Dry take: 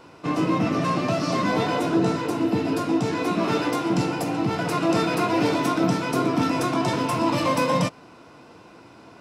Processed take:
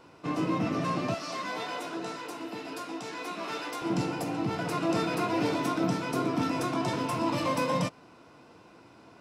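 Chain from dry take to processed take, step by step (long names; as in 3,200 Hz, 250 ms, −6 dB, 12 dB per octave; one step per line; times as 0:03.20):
0:01.14–0:03.82: high-pass filter 1,000 Hz 6 dB per octave
level −6.5 dB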